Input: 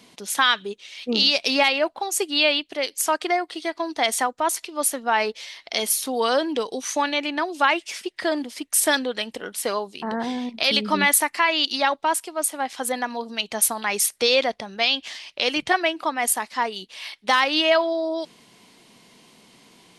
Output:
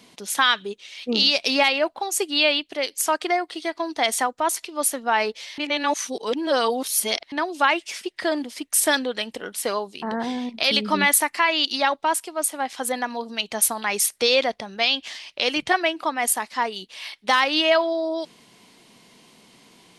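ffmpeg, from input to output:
-filter_complex "[0:a]asplit=3[a][b][c];[a]atrim=end=5.582[d];[b]atrim=start=5.578:end=7.322,asetpts=PTS-STARTPTS,areverse[e];[c]atrim=start=7.318[f];[d][e]acrossfade=d=0.004:c1=hsin:c2=hsin[g];[g][f]acrossfade=d=0.004:c1=hsin:c2=hsin"

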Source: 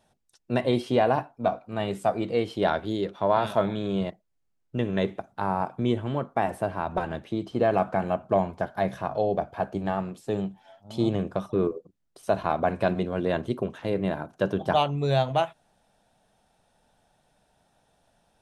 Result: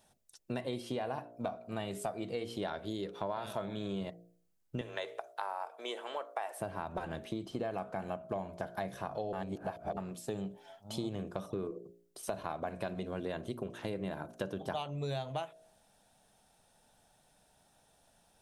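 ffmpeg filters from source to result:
-filter_complex "[0:a]asettb=1/sr,asplit=3[a][b][c];[a]atrim=end=4.814[d];[b]atrim=start=4.81:end=6.6,asetpts=PTS-STARTPTS,afade=t=in:d=0.004:c=qsin,afade=t=out:st=1.786:d=0.004:c=qsin,highpass=f=510:w=0.5412,highpass=f=510:w=1.3066[e];[c]atrim=start=6.596[f];[d][e]acrossfade=d=0.004:c1=hsin:c2=qsin[g];[g][f]acrossfade=d=0.004:c1=qsin:c2=hsin,asplit=3[h][i][j];[h]atrim=end=9.332[k];[i]atrim=start=9.328:end=9.972,asetpts=PTS-STARTPTS,areverse[l];[j]atrim=start=9.968[m];[k][l]acrossfade=d=0.004:c1=hsin:c2=hsin[n];[n][m]acrossfade=d=0.004:c1=hsin:c2=hsin,highshelf=f=5.4k:g=10.5,bandreject=f=58.37:t=h:w=4,bandreject=f=116.74:t=h:w=4,bandreject=f=175.11:t=h:w=4,bandreject=f=233.48:t=h:w=4,bandreject=f=291.85:t=h:w=4,bandreject=f=350.22:t=h:w=4,bandreject=f=408.59:t=h:w=4,bandreject=f=466.96:t=h:w=4,bandreject=f=525.33:t=h:w=4,bandreject=f=583.7:t=h:w=4,bandreject=f=642.07:t=h:w=4,bandreject=f=700.44:t=h:w=4,acompressor=threshold=-32dB:ratio=6,volume=-2.5dB"

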